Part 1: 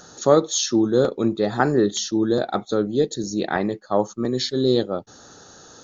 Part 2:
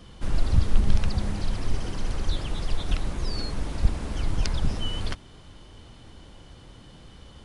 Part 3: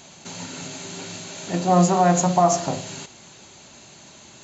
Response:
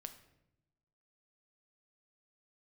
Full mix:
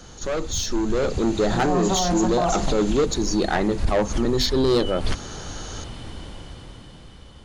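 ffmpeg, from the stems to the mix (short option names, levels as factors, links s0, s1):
-filter_complex "[0:a]bandreject=f=50:t=h:w=6,bandreject=f=100:t=h:w=6,bandreject=f=150:t=h:w=6,bandreject=f=200:t=h:w=6,bandreject=f=250:t=h:w=6,asoftclip=type=tanh:threshold=0.106,volume=0.708,asplit=2[s0][s1];[1:a]volume=1.19[s2];[2:a]volume=0.237[s3];[s1]apad=whole_len=328287[s4];[s2][s4]sidechaincompress=threshold=0.00794:ratio=8:attack=26:release=157[s5];[s0][s5][s3]amix=inputs=3:normalize=0,dynaudnorm=f=300:g=9:m=4.22,alimiter=limit=0.224:level=0:latency=1:release=28"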